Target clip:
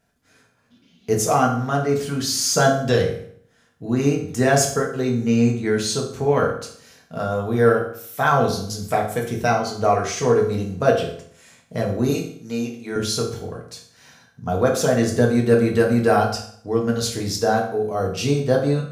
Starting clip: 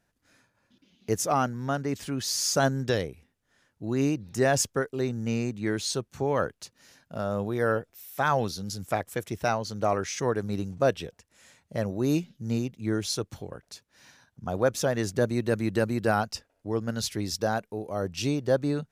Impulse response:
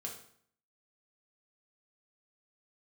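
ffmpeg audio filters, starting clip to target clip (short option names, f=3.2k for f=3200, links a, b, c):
-filter_complex "[0:a]asettb=1/sr,asplit=3[a][b][c];[a]atrim=end=12.104[d];[b]atrim=start=12.1:end=12.96,asetpts=PTS-STARTPTS,afade=t=in:d=0.004:c=qsin,afade=t=out:st=0.856:d=0.004:c=qsin,highpass=f=650:p=1[e];[c]atrim=start=12.956[f];[d][e]acrossfade=d=0.004:c1=hsin:c2=qsin[g];[g][f]acrossfade=d=0.004:c1=qsin:c2=hsin[h];[1:a]atrim=start_sample=2205[i];[h][i]afir=irnorm=-1:irlink=0,volume=8.5dB"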